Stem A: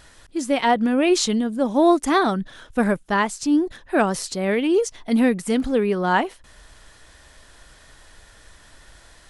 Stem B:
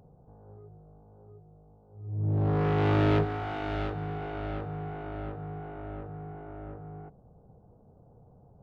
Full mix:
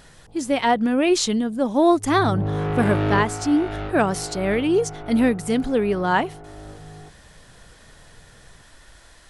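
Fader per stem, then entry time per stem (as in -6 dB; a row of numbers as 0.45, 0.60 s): -0.5, +2.0 dB; 0.00, 0.00 s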